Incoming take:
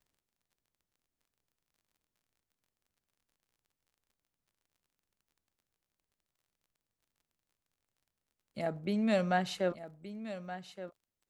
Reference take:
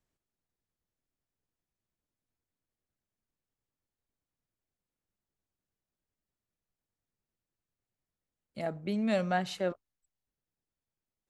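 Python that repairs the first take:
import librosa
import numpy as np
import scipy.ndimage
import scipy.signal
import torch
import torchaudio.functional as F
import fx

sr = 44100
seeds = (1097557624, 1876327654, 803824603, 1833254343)

y = fx.fix_declick_ar(x, sr, threshold=6.5)
y = fx.fix_echo_inverse(y, sr, delay_ms=1173, level_db=-12.5)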